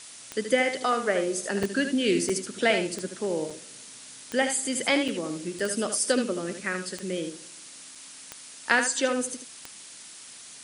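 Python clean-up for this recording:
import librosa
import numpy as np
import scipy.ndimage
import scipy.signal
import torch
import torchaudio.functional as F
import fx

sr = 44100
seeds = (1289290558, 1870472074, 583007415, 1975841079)

y = fx.fix_declick_ar(x, sr, threshold=10.0)
y = fx.fix_interpolate(y, sr, at_s=(1.63, 2.29, 3.5, 5.08, 5.59, 7.95), length_ms=4.9)
y = fx.noise_reduce(y, sr, print_start_s=7.6, print_end_s=8.1, reduce_db=27.0)
y = fx.fix_echo_inverse(y, sr, delay_ms=76, level_db=-8.0)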